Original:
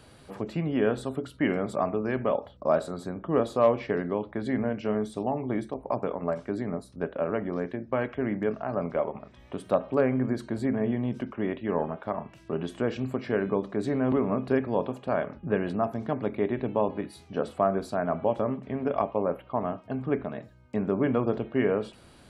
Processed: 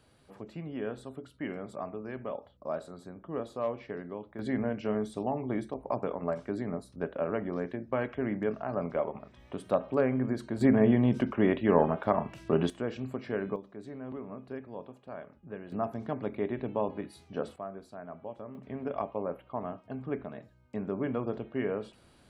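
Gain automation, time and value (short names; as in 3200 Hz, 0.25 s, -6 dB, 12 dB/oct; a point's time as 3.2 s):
-11 dB
from 4.39 s -3 dB
from 10.61 s +4.5 dB
from 12.7 s -6 dB
from 13.56 s -15.5 dB
from 15.72 s -5 dB
from 17.56 s -16 dB
from 18.55 s -7 dB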